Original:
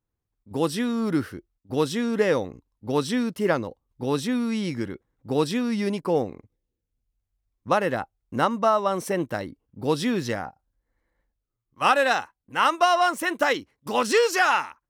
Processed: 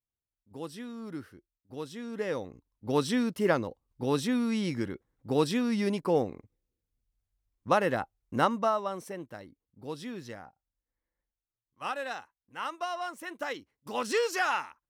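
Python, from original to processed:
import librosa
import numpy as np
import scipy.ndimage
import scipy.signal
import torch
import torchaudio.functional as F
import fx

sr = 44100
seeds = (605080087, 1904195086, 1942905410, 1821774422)

y = fx.gain(x, sr, db=fx.line((1.91, -15.5), (2.94, -3.0), (8.46, -3.0), (9.2, -15.0), (13.23, -15.0), (14.14, -8.0)))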